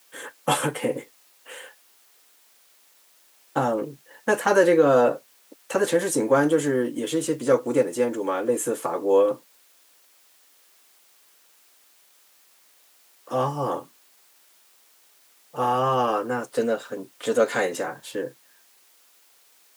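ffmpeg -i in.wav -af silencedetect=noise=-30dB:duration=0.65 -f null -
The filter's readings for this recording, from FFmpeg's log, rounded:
silence_start: 1.61
silence_end: 3.56 | silence_duration: 1.95
silence_start: 9.34
silence_end: 13.31 | silence_duration: 3.97
silence_start: 13.79
silence_end: 15.56 | silence_duration: 1.77
silence_start: 18.28
silence_end: 19.77 | silence_duration: 1.49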